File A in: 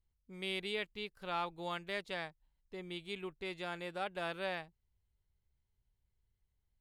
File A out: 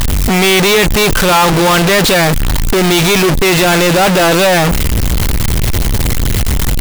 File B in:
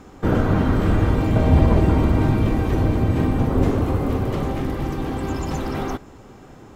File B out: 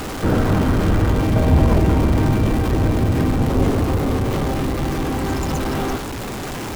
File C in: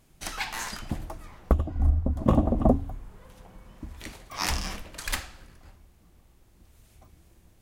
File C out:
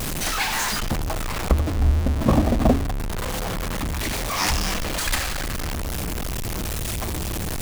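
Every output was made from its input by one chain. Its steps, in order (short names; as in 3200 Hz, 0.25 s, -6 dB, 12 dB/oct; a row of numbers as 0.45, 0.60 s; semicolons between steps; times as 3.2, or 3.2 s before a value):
zero-crossing step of -22 dBFS; normalise peaks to -3 dBFS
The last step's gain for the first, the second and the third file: +17.5, -0.5, +1.0 dB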